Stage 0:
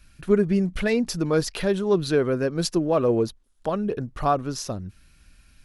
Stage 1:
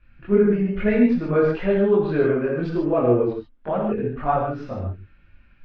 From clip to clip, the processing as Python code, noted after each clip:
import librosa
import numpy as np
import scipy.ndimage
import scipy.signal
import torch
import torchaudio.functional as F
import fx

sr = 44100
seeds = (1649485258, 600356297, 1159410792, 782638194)

y = scipy.signal.sosfilt(scipy.signal.butter(4, 2500.0, 'lowpass', fs=sr, output='sos'), x)
y = fx.chorus_voices(y, sr, voices=4, hz=1.0, base_ms=22, depth_ms=3.0, mix_pct=60)
y = fx.rev_gated(y, sr, seeds[0], gate_ms=170, shape='flat', drr_db=-0.5)
y = y * librosa.db_to_amplitude(1.5)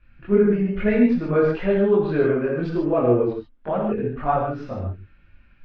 y = x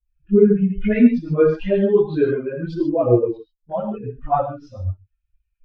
y = fx.bin_expand(x, sr, power=2.0)
y = fx.peak_eq(y, sr, hz=1400.0, db=-6.0, octaves=1.1)
y = fx.dispersion(y, sr, late='highs', ms=46.0, hz=400.0)
y = y * librosa.db_to_amplitude(6.5)